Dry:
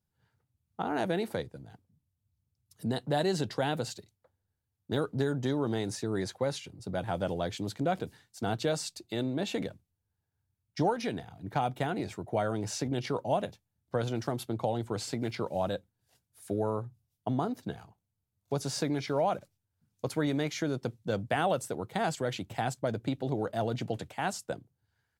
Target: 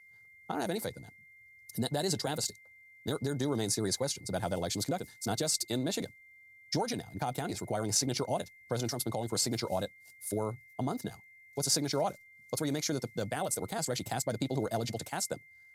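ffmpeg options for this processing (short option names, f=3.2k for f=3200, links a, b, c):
-af "alimiter=limit=-21.5dB:level=0:latency=1:release=310,aexciter=amount=4.5:drive=3.9:freq=4.2k,aeval=exprs='val(0)+0.00178*sin(2*PI*2100*n/s)':c=same,atempo=1.6,aresample=32000,aresample=44100"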